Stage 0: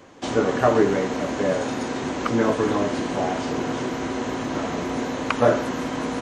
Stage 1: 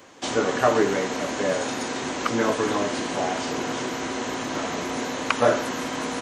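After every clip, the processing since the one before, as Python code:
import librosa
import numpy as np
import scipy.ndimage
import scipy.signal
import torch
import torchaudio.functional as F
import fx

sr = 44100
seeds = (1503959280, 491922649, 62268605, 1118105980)

y = fx.tilt_eq(x, sr, slope=2.0)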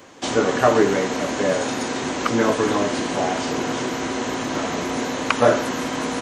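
y = fx.low_shelf(x, sr, hz=420.0, db=3.0)
y = F.gain(torch.from_numpy(y), 2.5).numpy()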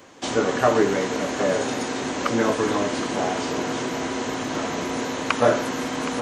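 y = x + 10.0 ** (-12.0 / 20.0) * np.pad(x, (int(769 * sr / 1000.0), 0))[:len(x)]
y = F.gain(torch.from_numpy(y), -2.5).numpy()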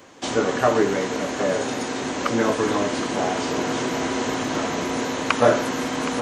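y = fx.rider(x, sr, range_db=10, speed_s=2.0)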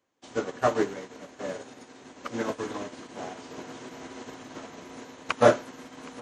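y = fx.upward_expand(x, sr, threshold_db=-33.0, expansion=2.5)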